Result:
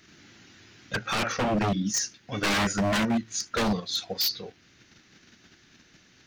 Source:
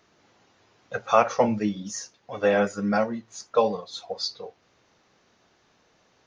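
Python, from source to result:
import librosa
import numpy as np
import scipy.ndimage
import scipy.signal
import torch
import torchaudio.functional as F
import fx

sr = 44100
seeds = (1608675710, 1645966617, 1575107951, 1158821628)

p1 = fx.band_shelf(x, sr, hz=710.0, db=-13.5, octaves=1.7)
p2 = fx.level_steps(p1, sr, step_db=11)
p3 = p1 + (p2 * 10.0 ** (2.0 / 20.0))
p4 = 10.0 ** (-24.5 / 20.0) * (np.abs((p3 / 10.0 ** (-24.5 / 20.0) + 3.0) % 4.0 - 2.0) - 1.0)
p5 = fx.high_shelf(p4, sr, hz=5000.0, db=-10.0, at=(0.94, 1.94))
y = p5 * 10.0 ** (5.0 / 20.0)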